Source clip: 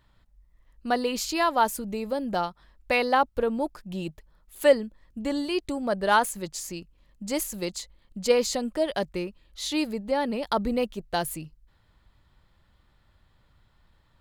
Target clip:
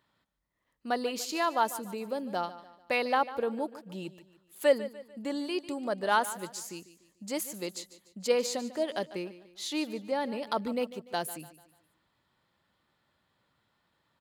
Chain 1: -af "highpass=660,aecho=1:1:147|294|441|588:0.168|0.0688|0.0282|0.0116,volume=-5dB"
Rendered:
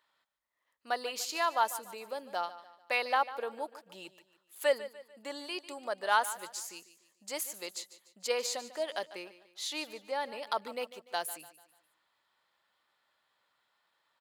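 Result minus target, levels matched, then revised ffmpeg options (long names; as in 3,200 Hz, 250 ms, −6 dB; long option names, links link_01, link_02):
250 Hz band −11.5 dB
-af "highpass=190,aecho=1:1:147|294|441|588:0.168|0.0688|0.0282|0.0116,volume=-5dB"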